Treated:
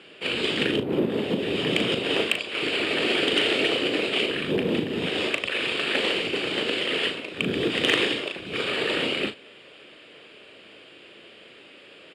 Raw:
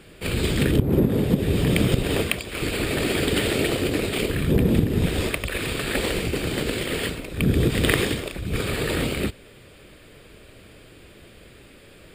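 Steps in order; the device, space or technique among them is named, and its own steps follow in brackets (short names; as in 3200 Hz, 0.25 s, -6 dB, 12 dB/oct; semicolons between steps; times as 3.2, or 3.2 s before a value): intercom (BPF 310–4800 Hz; bell 2900 Hz +9 dB 0.38 oct; soft clip -9 dBFS, distortion -20 dB; doubler 38 ms -8.5 dB)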